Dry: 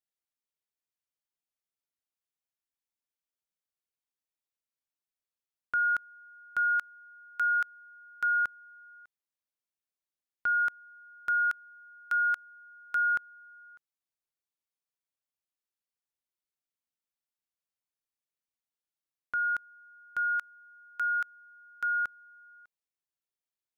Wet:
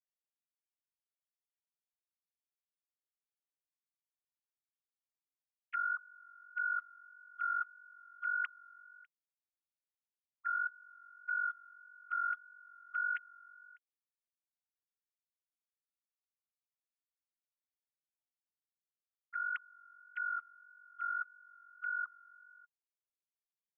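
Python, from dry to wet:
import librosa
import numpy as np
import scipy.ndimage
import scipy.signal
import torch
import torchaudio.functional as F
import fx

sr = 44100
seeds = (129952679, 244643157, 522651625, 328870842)

y = fx.sine_speech(x, sr)
y = fx.vibrato(y, sr, rate_hz=1.7, depth_cents=27.0)
y = F.gain(torch.from_numpy(y), -8.5).numpy()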